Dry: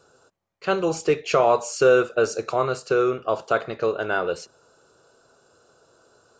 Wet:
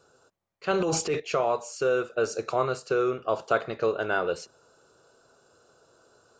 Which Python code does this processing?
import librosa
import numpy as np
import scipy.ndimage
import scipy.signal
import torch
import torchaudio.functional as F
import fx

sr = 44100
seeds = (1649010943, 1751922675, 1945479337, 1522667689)

y = fx.rider(x, sr, range_db=10, speed_s=0.5)
y = fx.transient(y, sr, attack_db=-6, sustain_db=10, at=(0.71, 1.2))
y = y * 10.0 ** (-5.0 / 20.0)